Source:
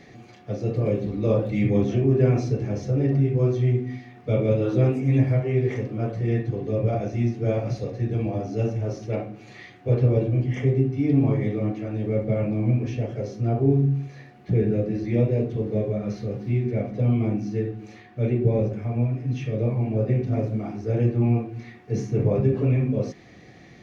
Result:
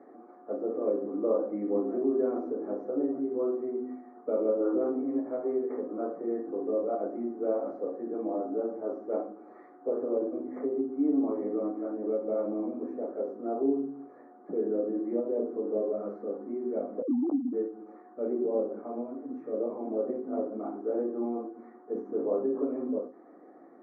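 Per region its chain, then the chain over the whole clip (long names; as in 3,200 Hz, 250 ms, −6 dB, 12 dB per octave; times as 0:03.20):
0:17.02–0:17.53: three sine waves on the formant tracks + Gaussian smoothing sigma 12 samples
whole clip: downward compressor 2 to 1, threshold −22 dBFS; elliptic band-pass filter 270–1,300 Hz, stop band 40 dB; every ending faded ahead of time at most 150 dB per second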